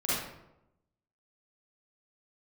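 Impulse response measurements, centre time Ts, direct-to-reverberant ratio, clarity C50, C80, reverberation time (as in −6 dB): 84 ms, −10.5 dB, −4.5 dB, 2.0 dB, 0.85 s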